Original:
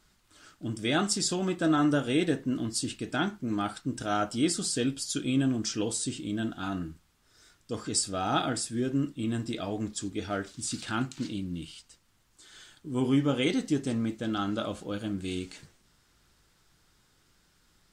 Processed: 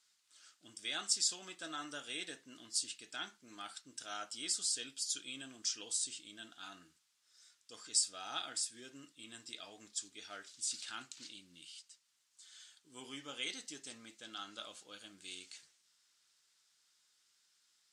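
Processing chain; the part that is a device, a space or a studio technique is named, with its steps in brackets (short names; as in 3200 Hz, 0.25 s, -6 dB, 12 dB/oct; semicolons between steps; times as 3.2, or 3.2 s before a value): piezo pickup straight into a mixer (LPF 6800 Hz 12 dB/oct; differentiator); gain +1 dB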